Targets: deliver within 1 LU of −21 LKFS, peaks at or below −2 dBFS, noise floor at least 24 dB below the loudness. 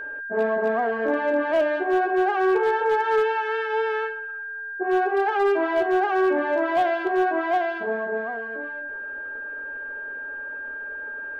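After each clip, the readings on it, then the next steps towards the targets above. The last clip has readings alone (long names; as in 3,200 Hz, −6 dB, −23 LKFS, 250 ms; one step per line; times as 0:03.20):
share of clipped samples 0.5%; peaks flattened at −14.5 dBFS; interfering tone 1,600 Hz; level of the tone −31 dBFS; integrated loudness −24.0 LKFS; sample peak −14.5 dBFS; target loudness −21.0 LKFS
→ clipped peaks rebuilt −14.5 dBFS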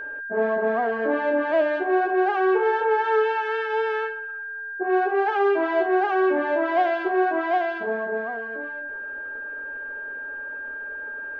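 share of clipped samples 0.0%; interfering tone 1,600 Hz; level of the tone −31 dBFS
→ notch filter 1,600 Hz, Q 30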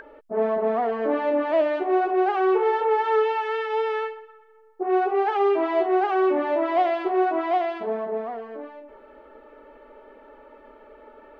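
interfering tone none found; integrated loudness −23.5 LKFS; sample peak −10.5 dBFS; target loudness −21.0 LKFS
→ level +2.5 dB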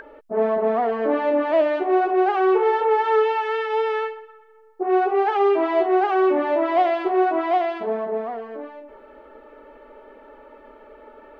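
integrated loudness −21.0 LKFS; sample peak −8.0 dBFS; background noise floor −48 dBFS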